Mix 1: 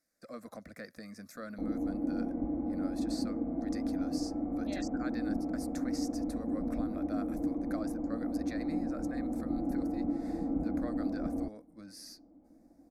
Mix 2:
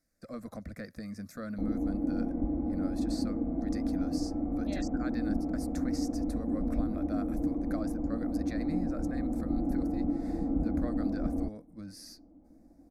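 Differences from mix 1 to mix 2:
speech: add bass shelf 200 Hz +8.5 dB; master: add bass shelf 130 Hz +10.5 dB

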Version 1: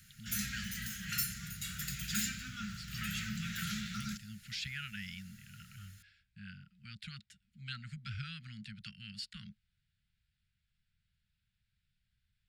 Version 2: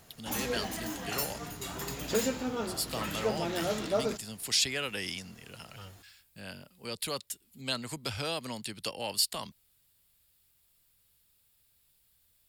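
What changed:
speech: remove tape spacing loss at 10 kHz 30 dB; master: remove Chebyshev band-stop 210–1400 Hz, order 5

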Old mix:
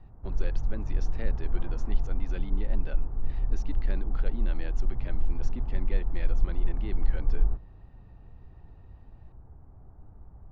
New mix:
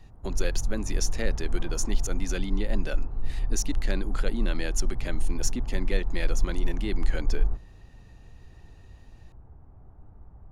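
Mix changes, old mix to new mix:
speech +7.5 dB; master: remove distance through air 270 m

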